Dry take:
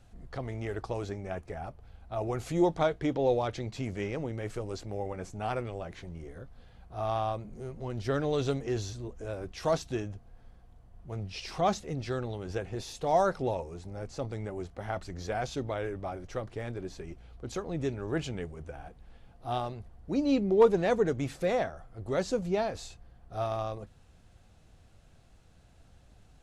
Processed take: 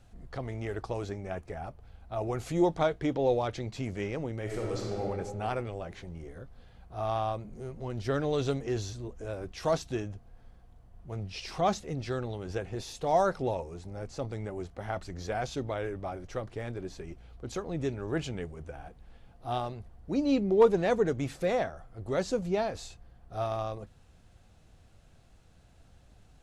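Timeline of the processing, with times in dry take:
4.42–5.02 s: reverb throw, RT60 2 s, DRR -2.5 dB

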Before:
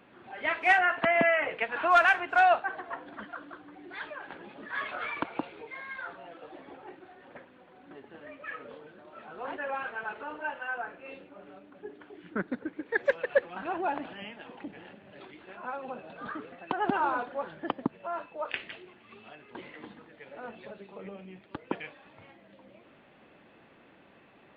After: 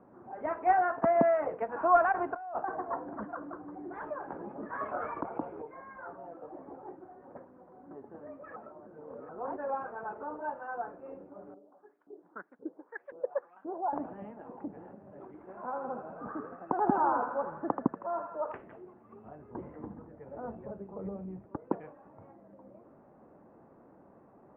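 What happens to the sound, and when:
2.12–5.62 s: compressor with a negative ratio -33 dBFS
8.56–9.29 s: reverse
11.54–13.93 s: LFO band-pass saw up 1.9 Hz 290–4100 Hz
15.26–18.57 s: band-passed feedback delay 80 ms, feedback 74%, band-pass 1.8 kHz, level -4 dB
19.24–21.49 s: peaking EQ 69 Hz +15 dB 2 oct
whole clip: low-pass 1.1 kHz 24 dB/octave; trim +1.5 dB

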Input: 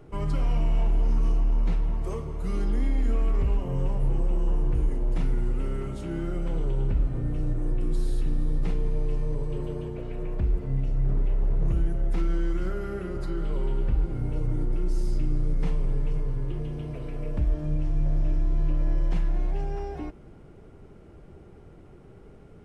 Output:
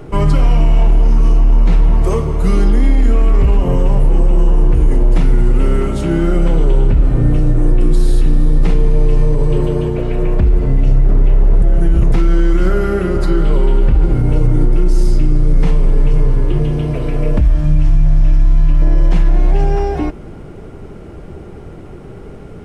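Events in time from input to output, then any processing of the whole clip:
11.62–12.12 s: reverse
17.40–18.82 s: peaking EQ 430 Hz -13 dB 1.2 oct
whole clip: de-hum 45.07 Hz, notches 3; loudness maximiser +19.5 dB; trim -2.5 dB

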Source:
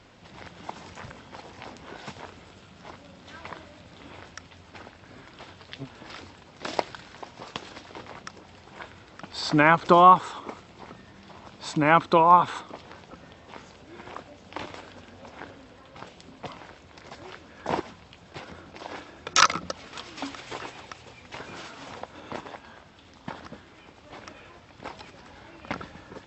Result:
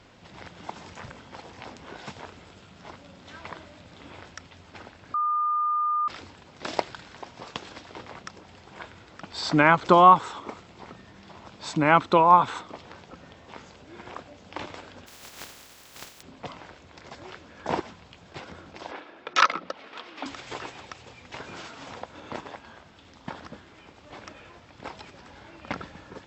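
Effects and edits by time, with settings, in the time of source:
5.14–6.08 s: bleep 1.21 kHz -22 dBFS
15.06–16.21 s: spectral contrast reduction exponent 0.19
18.91–20.26 s: three-band isolator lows -21 dB, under 230 Hz, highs -20 dB, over 4.1 kHz

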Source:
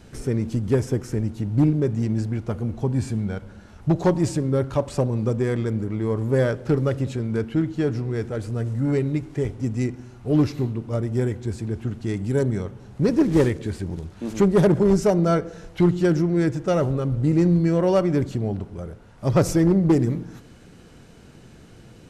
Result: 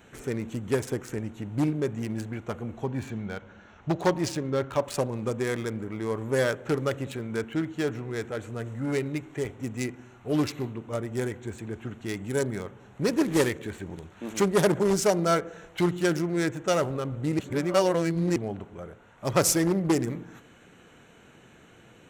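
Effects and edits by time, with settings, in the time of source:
2.84–4.84 s: steep low-pass 6.6 kHz
17.39–18.36 s: reverse
whole clip: local Wiener filter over 9 samples; tilt EQ +3.5 dB/octave

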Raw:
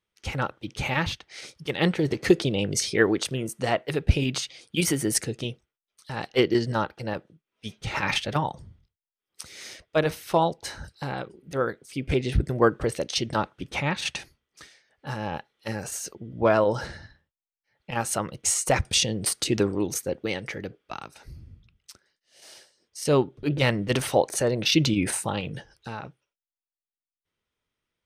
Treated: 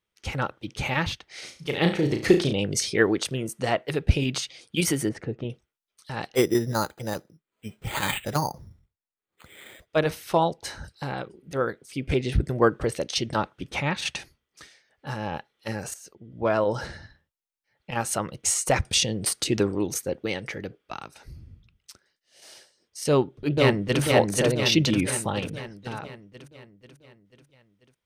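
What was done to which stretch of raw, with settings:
1.24–2.53 s: flutter echo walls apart 6.1 m, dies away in 0.35 s
5.09–5.50 s: low-pass 1.5 kHz
6.35–9.87 s: careless resampling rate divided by 8×, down filtered, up hold
15.94–16.86 s: fade in, from -14.5 dB
23.08–24.02 s: echo throw 490 ms, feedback 55%, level -1 dB

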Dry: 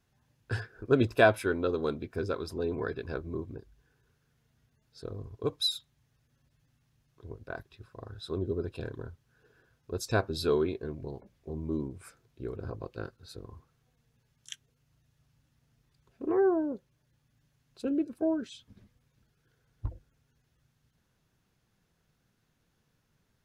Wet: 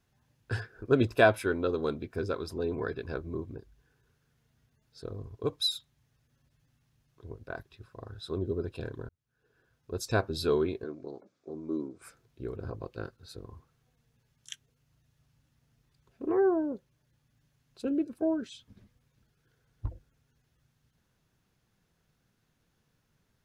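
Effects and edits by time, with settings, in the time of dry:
9.09–10.01 s: fade in
10.84–12.02 s: cabinet simulation 280–7700 Hz, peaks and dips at 300 Hz +4 dB, 920 Hz -5 dB, 1.3 kHz +6 dB, 1.9 kHz -7 dB, 2.9 kHz -8 dB

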